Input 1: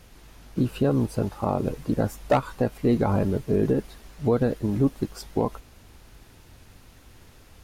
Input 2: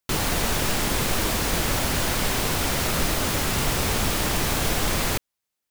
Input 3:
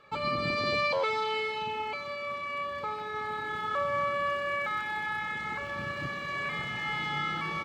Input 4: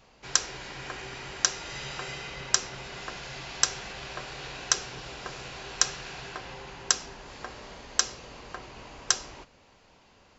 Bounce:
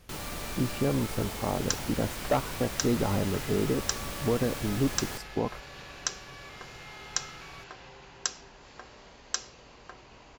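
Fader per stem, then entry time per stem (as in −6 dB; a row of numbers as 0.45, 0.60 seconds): −5.5, −14.0, −16.5, −7.0 decibels; 0.00, 0.00, 0.00, 1.35 seconds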